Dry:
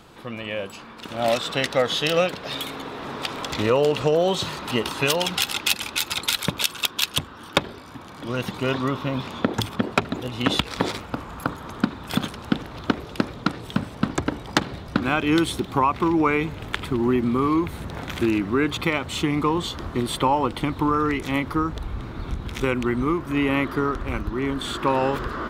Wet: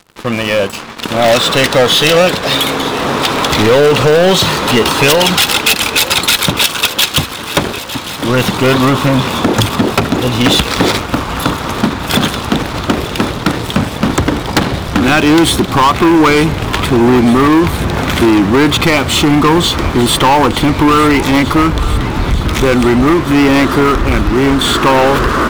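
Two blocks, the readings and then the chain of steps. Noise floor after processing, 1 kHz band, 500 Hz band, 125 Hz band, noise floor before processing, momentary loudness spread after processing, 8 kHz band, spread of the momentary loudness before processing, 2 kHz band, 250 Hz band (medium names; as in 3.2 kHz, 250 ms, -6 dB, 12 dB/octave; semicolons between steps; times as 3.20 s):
-22 dBFS, +13.0 dB, +12.5 dB, +14.0 dB, -41 dBFS, 7 LU, +15.0 dB, 10 LU, +14.0 dB, +13.0 dB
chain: waveshaping leveller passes 5; thinning echo 904 ms, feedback 75%, high-pass 420 Hz, level -14.5 dB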